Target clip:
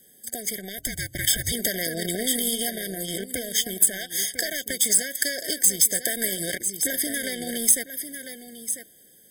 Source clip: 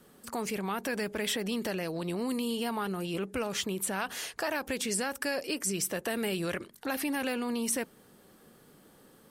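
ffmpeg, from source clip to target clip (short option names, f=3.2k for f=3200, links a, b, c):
-filter_complex "[0:a]asplit=2[a][b];[b]aecho=0:1:997:0.335[c];[a][c]amix=inputs=2:normalize=0,aeval=exprs='0.133*(cos(1*acos(clip(val(0)/0.133,-1,1)))-cos(1*PI/2))+0.00299*(cos(2*acos(clip(val(0)/0.133,-1,1)))-cos(2*PI/2))+0.00473*(cos(4*acos(clip(val(0)/0.133,-1,1)))-cos(4*PI/2))+0.0119*(cos(7*acos(clip(val(0)/0.133,-1,1)))-cos(7*PI/2))':c=same,asplit=3[d][e][f];[d]afade=t=out:st=4.73:d=0.02[g];[e]highpass=91,afade=t=in:st=4.73:d=0.02,afade=t=out:st=5.39:d=0.02[h];[f]afade=t=in:st=5.39:d=0.02[i];[g][h][i]amix=inputs=3:normalize=0,asettb=1/sr,asplit=3[j][k][l];[j]atrim=end=6.854[m];[k]atrim=start=6.85:end=7.45,asetpts=PTS-STARTPTS,afade=t=in:d=0.004:c=qsin,afade=t=out:st=0.596:d=0.004:c=qsin,highshelf=f=12k:g=-7[n];[l]atrim=start=7.446[o];[m][n]acrossfade=d=0.004:c1=hsin:c2=qsin[p];[p][o]acrossfade=d=0.004:c1=qsin:c2=hsin,acompressor=threshold=-35dB:ratio=16,crystalizer=i=7:c=0,dynaudnorm=f=170:g=13:m=11.5dB,asplit=3[q][r][s];[q]afade=t=out:st=0.77:d=0.02[t];[r]afreqshift=-290,afade=t=in:st=0.77:d=0.02,afade=t=out:st=1.51:d=0.02[u];[s]afade=t=in:st=1.51:d=0.02[v];[t][u][v]amix=inputs=3:normalize=0,afftfilt=real='re*eq(mod(floor(b*sr/1024/760),2),0)':imag='im*eq(mod(floor(b*sr/1024/760),2),0)':win_size=1024:overlap=0.75,volume=2.5dB"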